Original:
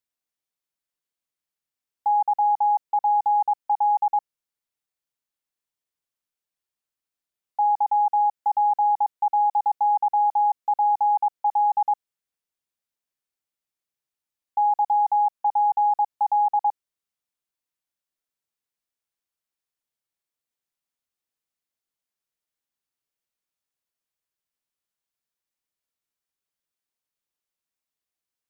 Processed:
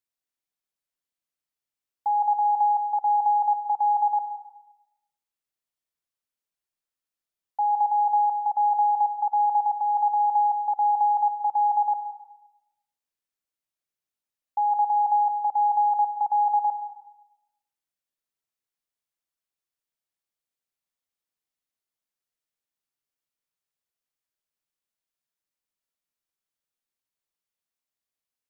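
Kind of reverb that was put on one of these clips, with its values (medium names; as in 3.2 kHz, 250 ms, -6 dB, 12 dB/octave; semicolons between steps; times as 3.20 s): algorithmic reverb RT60 0.91 s, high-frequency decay 0.9×, pre-delay 75 ms, DRR 7.5 dB; trim -3 dB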